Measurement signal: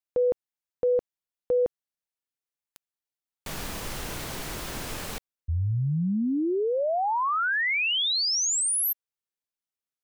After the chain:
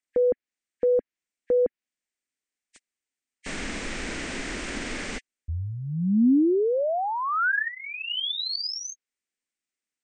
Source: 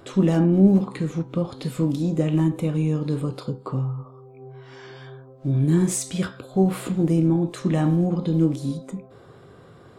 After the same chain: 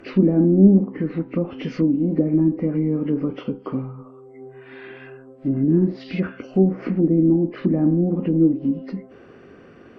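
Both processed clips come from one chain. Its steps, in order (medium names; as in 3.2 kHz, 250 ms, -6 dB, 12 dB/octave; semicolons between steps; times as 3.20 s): knee-point frequency compression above 1.6 kHz 1.5:1; ten-band graphic EQ 125 Hz -11 dB, 250 Hz +9 dB, 1 kHz -6 dB, 2 kHz +9 dB, 4 kHz -4 dB; low-pass that closes with the level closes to 610 Hz, closed at -17 dBFS; trim +1.5 dB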